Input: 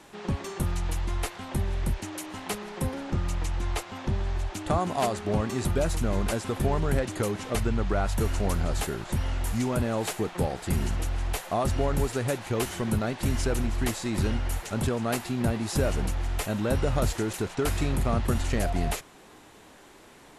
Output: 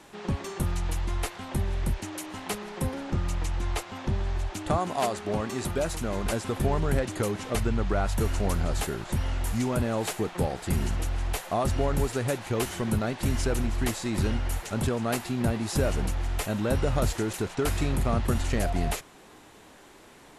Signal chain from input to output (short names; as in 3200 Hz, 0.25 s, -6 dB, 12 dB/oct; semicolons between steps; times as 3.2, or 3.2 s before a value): 4.76–6.25 low shelf 170 Hz -8 dB